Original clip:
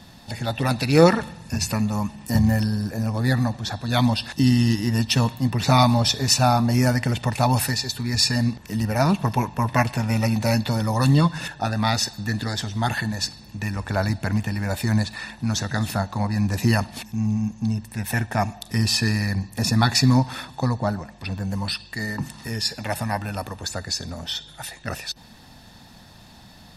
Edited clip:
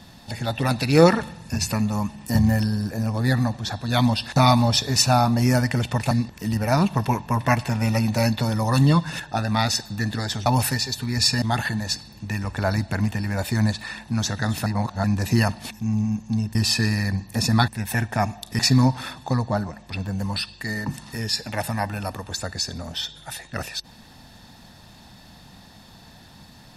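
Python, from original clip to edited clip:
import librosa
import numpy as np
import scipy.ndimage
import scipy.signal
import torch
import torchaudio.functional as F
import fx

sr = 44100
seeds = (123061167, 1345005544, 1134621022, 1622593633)

y = fx.edit(x, sr, fx.cut(start_s=4.36, length_s=1.32),
    fx.move(start_s=7.43, length_s=0.96, to_s=12.74),
    fx.reverse_span(start_s=15.98, length_s=0.38),
    fx.move(start_s=17.87, length_s=0.91, to_s=19.91), tone=tone)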